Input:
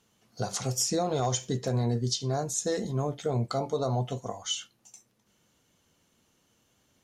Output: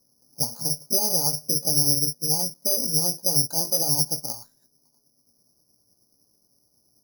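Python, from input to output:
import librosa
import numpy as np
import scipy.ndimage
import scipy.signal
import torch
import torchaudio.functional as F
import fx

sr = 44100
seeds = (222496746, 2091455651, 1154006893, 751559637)

y = fx.pitch_heads(x, sr, semitones=3.0)
y = scipy.signal.sosfilt(scipy.signal.bessel(6, 660.0, 'lowpass', norm='mag', fs=sr, output='sos'), y)
y = (np.kron(y[::8], np.eye(8)[0]) * 8)[:len(y)]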